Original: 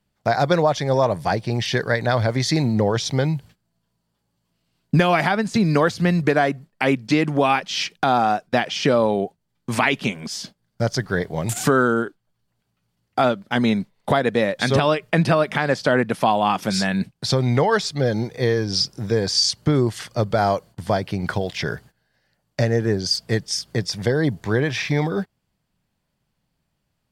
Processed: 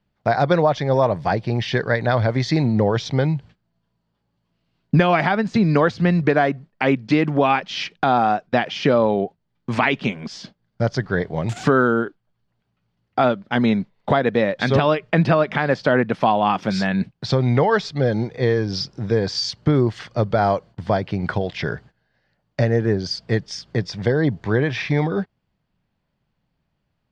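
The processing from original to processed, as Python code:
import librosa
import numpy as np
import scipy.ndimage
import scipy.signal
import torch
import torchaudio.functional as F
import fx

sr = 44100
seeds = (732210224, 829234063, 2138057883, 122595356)

y = fx.air_absorb(x, sr, metres=170.0)
y = y * 10.0 ** (1.5 / 20.0)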